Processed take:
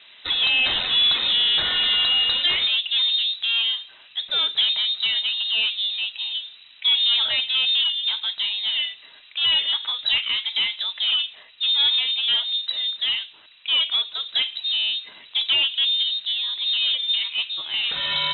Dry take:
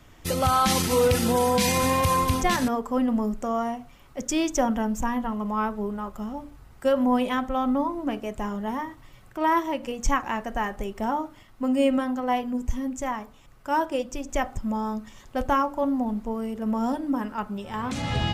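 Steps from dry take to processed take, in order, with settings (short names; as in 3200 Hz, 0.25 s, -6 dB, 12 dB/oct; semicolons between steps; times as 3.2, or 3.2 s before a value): low-pass opened by the level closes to 2800 Hz, open at -22 dBFS; overdrive pedal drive 18 dB, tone 1400 Hz, clips at -11.5 dBFS; inverted band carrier 3900 Hz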